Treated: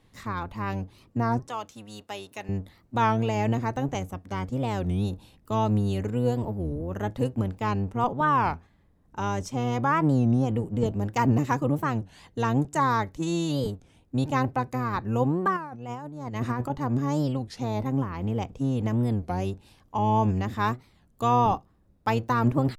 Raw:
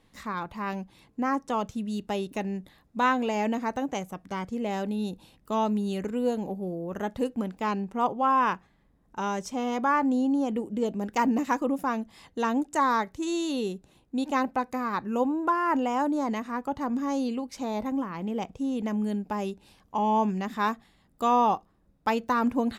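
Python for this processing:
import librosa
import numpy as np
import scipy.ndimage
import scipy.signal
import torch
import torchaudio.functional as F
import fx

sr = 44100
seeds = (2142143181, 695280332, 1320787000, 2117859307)

y = fx.octave_divider(x, sr, octaves=1, level_db=2.0)
y = fx.highpass(y, sr, hz=1200.0, slope=6, at=(1.49, 2.49))
y = fx.over_compress(y, sr, threshold_db=-31.0, ratio=-0.5, at=(15.59, 16.7))
y = fx.record_warp(y, sr, rpm=33.33, depth_cents=250.0)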